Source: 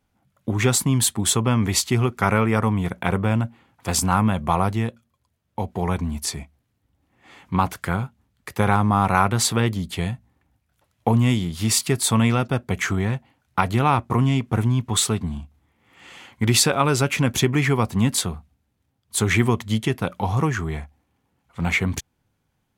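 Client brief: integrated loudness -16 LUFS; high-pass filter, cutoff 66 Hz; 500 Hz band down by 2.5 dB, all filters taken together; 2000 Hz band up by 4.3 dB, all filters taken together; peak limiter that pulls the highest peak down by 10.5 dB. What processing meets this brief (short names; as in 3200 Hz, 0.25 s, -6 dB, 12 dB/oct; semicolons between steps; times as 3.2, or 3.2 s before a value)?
HPF 66 Hz; bell 500 Hz -3.5 dB; bell 2000 Hz +5.5 dB; gain +8.5 dB; limiter -3.5 dBFS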